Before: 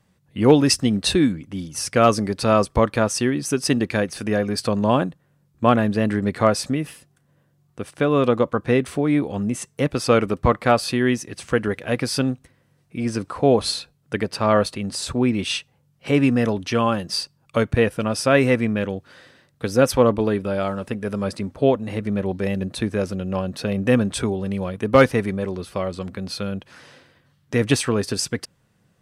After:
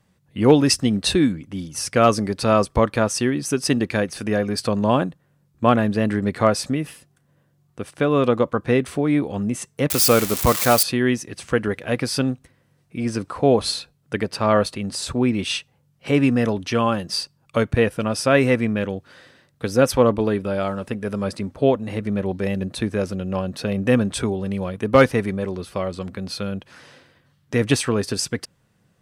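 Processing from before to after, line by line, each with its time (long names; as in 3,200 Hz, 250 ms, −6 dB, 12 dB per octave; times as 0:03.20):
0:09.90–0:10.83: spike at every zero crossing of −11 dBFS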